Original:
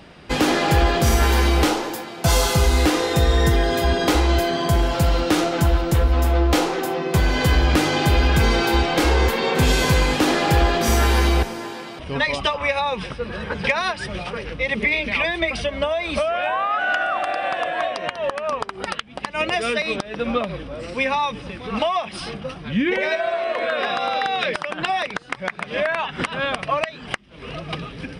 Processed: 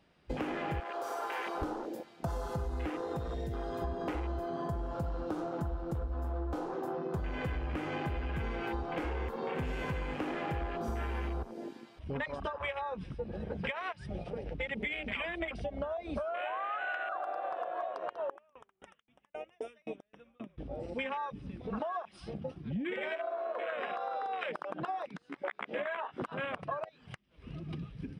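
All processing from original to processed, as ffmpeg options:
-filter_complex "[0:a]asettb=1/sr,asplit=3[a][b][c];[a]atrim=end=0.804[d];[b]atrim=start=0.8:end=1.62,asetpts=PTS-STARTPTS,afade=t=in:d=0.004:c=qsin,afade=t=out:st=0.816:d=0.004:c=qsin,highpass=560,volume=20dB,asoftclip=hard,volume=-20dB[e];[c]atrim=start=1.616[f];[d][e]acrossfade=d=0.004:c1=hsin:c2=qsin[g];[g][f]acrossfade=d=0.004:c1=qsin:c2=hsin,asettb=1/sr,asplit=3[h][i][j];[h]atrim=end=3.164[k];[i]atrim=start=3.16:end=3.82,asetpts=PTS-STARTPTS,afade=t=in:d=0.004:c=qsin,afade=t=out:st=0.656:d=0.004:c=qsin,asoftclip=type=hard:threshold=-13dB,highshelf=f=2k:g=10.5,acrossover=split=120|3300[l][m][n];[l]acompressor=threshold=-27dB:ratio=4[o];[m]acompressor=threshold=-23dB:ratio=4[p];[n]acompressor=threshold=-36dB:ratio=4[q];[o][p][q]amix=inputs=3:normalize=0[r];[j]atrim=start=3.816[s];[k][r]acrossfade=d=0.004:c1=hsin:c2=qsin[t];[t][s]acrossfade=d=0.004:c1=qsin:c2=hsin,asettb=1/sr,asplit=3[u][v][w];[u]atrim=end=18.294[x];[v]atrim=start=18.29:end=20.58,asetpts=PTS-STARTPTS,afade=t=in:d=0.004:c=qsin,afade=t=out:st=2.286:d=0.004:c=qsin,asuperstop=centerf=4400:order=8:qfactor=2.7,aeval=exprs='val(0)*pow(10,-31*if(lt(mod(3.8*n/s,1),2*abs(3.8)/1000),1-mod(3.8*n/s,1)/(2*abs(3.8)/1000),(mod(3.8*n/s,1)-2*abs(3.8)/1000)/(1-2*abs(3.8)/1000))/20)':c=same[y];[w]atrim=start=20.576[z];[x][y]acrossfade=d=0.004:c1=hsin:c2=qsin[aa];[aa][z]acrossfade=d=0.004:c1=qsin:c2=hsin,asettb=1/sr,asplit=3[ab][ac][ad];[ab]atrim=end=25.224[ae];[ac]atrim=start=25.22:end=26.22,asetpts=PTS-STARTPTS,afade=t=in:d=0.004:c=qsin,afade=t=out:st=0.996:d=0.004:c=qsin,acrossover=split=3100[af][ag];[ag]acompressor=threshold=-42dB:ratio=4:attack=1:release=60[ah];[af][ah]amix=inputs=2:normalize=0,lowshelf=f=200:t=q:w=1.5:g=-8,asplit=2[ai][aj];[aj]adelay=14,volume=-2.5dB[ak];[ai][ak]amix=inputs=2:normalize=0,atrim=end_sample=44100[al];[ad]atrim=start=26.216[am];[ae][al]acrossfade=d=0.004:c1=hsin:c2=qsin[an];[an][am]acrossfade=d=0.004:c1=qsin:c2=hsin,afwtdn=0.0708,acompressor=threshold=-27dB:ratio=6,volume=-6.5dB"

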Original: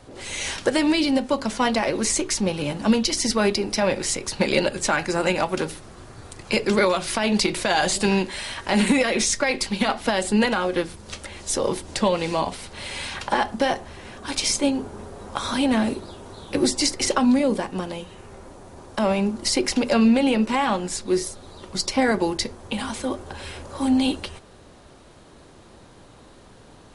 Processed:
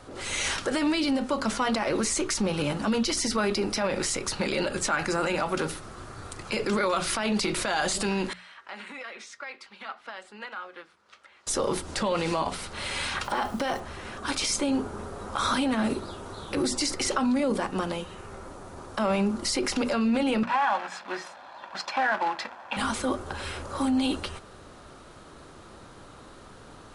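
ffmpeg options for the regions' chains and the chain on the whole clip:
-filter_complex "[0:a]asettb=1/sr,asplit=3[a][b][c];[a]atrim=end=8.334[d];[b]atrim=start=8.33:end=11.47,asetpts=PTS-STARTPTS,afade=t=in:d=0.004:c=qsin,afade=t=out:st=3.136:d=0.004:c=qsin,lowpass=1.7k,aderivative[e];[c]atrim=start=11.466[f];[d][e]acrossfade=d=0.004:c1=hsin:c2=qsin[g];[g][f]acrossfade=d=0.004:c1=qsin:c2=hsin,asettb=1/sr,asplit=3[h][i][j];[h]atrim=end=13.244[k];[i]atrim=start=13.24:end=13.8,asetpts=PTS-STARTPTS,afade=t=in:d=0.004:c=qsin,afade=t=out:st=0.556:d=0.004:c=qsin,bandreject=f=1.7k:w=15,acrusher=bits=9:dc=4:mix=0:aa=0.000001[l];[j]atrim=start=13.796[m];[k][l]acrossfade=d=0.004:c1=hsin:c2=qsin[n];[n][m]acrossfade=d=0.004:c1=qsin:c2=hsin,asettb=1/sr,asplit=3[o][p][q];[o]atrim=end=20.434[r];[p]atrim=start=20.43:end=22.77,asetpts=PTS-STARTPTS,afade=t=in:d=0.004:c=qsin,afade=t=out:st=2.336:d=0.004:c=qsin,aecho=1:1:1.2:0.89,atrim=end_sample=103194,acrusher=bits=2:mode=log:mix=0:aa=0.000001,highpass=600,lowpass=2.3k[s];[q]atrim=start=22.766[t];[r][s]acrossfade=d=0.004:c1=hsin:c2=qsin[u];[u][t]acrossfade=d=0.004:c1=qsin:c2=hsin,bandreject=f=60:t=h:w=6,bandreject=f=120:t=h:w=6,bandreject=f=180:t=h:w=6,bandreject=f=240:t=h:w=6,alimiter=limit=-18.5dB:level=0:latency=1:release=27,equalizer=f=1.3k:w=3.4:g=8"

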